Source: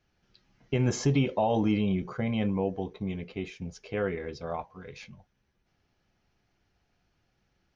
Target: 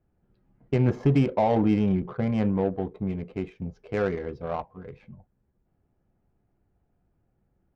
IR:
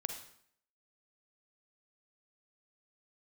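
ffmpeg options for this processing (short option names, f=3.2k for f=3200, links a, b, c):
-filter_complex "[0:a]asettb=1/sr,asplit=3[a][b][c];[a]atrim=end=2.694[d];[b]atrim=start=2.69:end=4.96,asetpts=PTS-STARTPTS,afade=t=in:d=0.004:c=qsin,afade=t=out:st=2.266:d=0.004:c=qsin,highshelf=f=3.8k:g=10.5[e];[c]atrim=start=4.956[f];[d][e]acrossfade=d=0.004:c1=hsin:c2=qsin[g];[g][f]acrossfade=d=0.004:c1=qsin:c2=hsin,adynamicsmooth=sensitivity=2:basefreq=830,volume=4dB"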